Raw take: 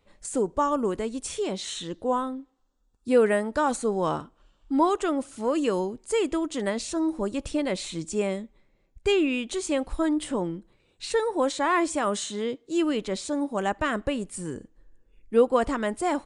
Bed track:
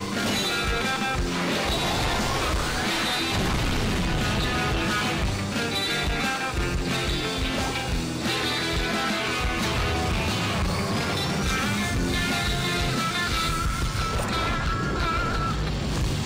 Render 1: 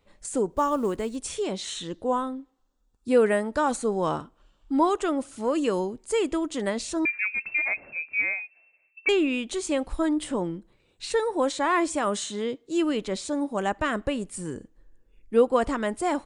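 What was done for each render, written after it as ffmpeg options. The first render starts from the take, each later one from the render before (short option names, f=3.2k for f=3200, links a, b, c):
-filter_complex "[0:a]asplit=3[a][b][c];[a]afade=t=out:st=0.5:d=0.02[d];[b]acrusher=bits=8:mode=log:mix=0:aa=0.000001,afade=t=in:st=0.5:d=0.02,afade=t=out:st=1.15:d=0.02[e];[c]afade=t=in:st=1.15:d=0.02[f];[d][e][f]amix=inputs=3:normalize=0,asettb=1/sr,asplit=3[g][h][i];[g]atrim=end=7.054[j];[h]atrim=start=7.05:end=9.09,asetpts=PTS-STARTPTS,afade=t=in:d=0.004:c=qsin,afade=t=out:st=2.036:d=0.004:c=qsin,lowpass=f=2.3k:t=q:w=0.5098,lowpass=f=2.3k:t=q:w=0.6013,lowpass=f=2.3k:t=q:w=0.9,lowpass=f=2.3k:t=q:w=2.563,afreqshift=-2700[k];[i]atrim=start=9.086[l];[j][k]acrossfade=d=0.004:c1=hsin:c2=qsin[m];[m][l]acrossfade=d=0.004:c1=qsin:c2=hsin"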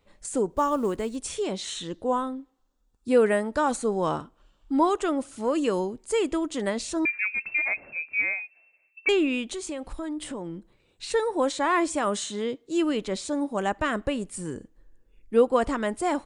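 -filter_complex "[0:a]asettb=1/sr,asplit=3[a][b][c];[a]atrim=end=9.524[d];[b]atrim=start=9.52:end=11.09,asetpts=PTS-STARTPTS,afade=t=in:d=0.004:c=qsin,afade=t=out:st=1.566:d=0.004:c=qsin,acompressor=threshold=-32dB:ratio=3:attack=3.2:release=140:knee=1:detection=peak[e];[c]atrim=start=11.086[f];[d][e]acrossfade=d=0.004:c1=hsin:c2=qsin[g];[g][f]acrossfade=d=0.004:c1=qsin:c2=hsin"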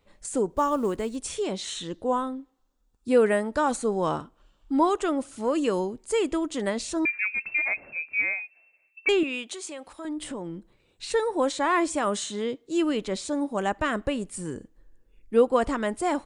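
-filter_complex "[0:a]asettb=1/sr,asplit=3[a][b][c];[a]atrim=end=9.234[d];[b]atrim=start=9.23:end=10.05,asetpts=PTS-STARTPTS,afade=t=in:d=0.004:c=qsin,afade=t=out:st=0.816:d=0.004:c=qsin,highpass=f=650:p=1[e];[c]atrim=start=10.046[f];[d][e]acrossfade=d=0.004:c1=hsin:c2=qsin[g];[g][f]acrossfade=d=0.004:c1=qsin:c2=hsin"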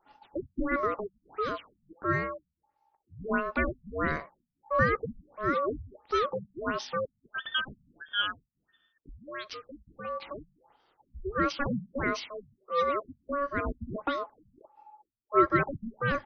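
-af "aeval=exprs='val(0)*sin(2*PI*850*n/s)':c=same,afftfilt=real='re*lt(b*sr/1024,220*pow(6400/220,0.5+0.5*sin(2*PI*1.5*pts/sr)))':imag='im*lt(b*sr/1024,220*pow(6400/220,0.5+0.5*sin(2*PI*1.5*pts/sr)))':win_size=1024:overlap=0.75"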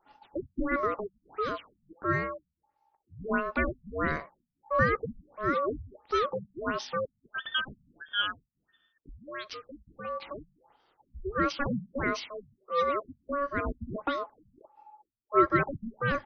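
-af anull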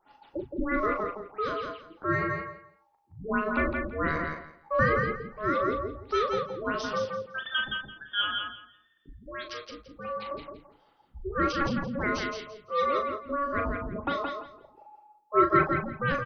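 -filter_complex "[0:a]asplit=2[a][b];[b]adelay=38,volume=-7dB[c];[a][c]amix=inputs=2:normalize=0,asplit=2[d][e];[e]aecho=0:1:169|338|507:0.596|0.119|0.0238[f];[d][f]amix=inputs=2:normalize=0"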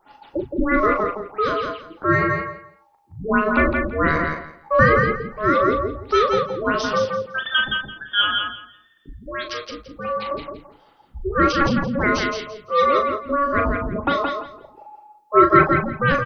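-af "volume=9.5dB,alimiter=limit=-1dB:level=0:latency=1"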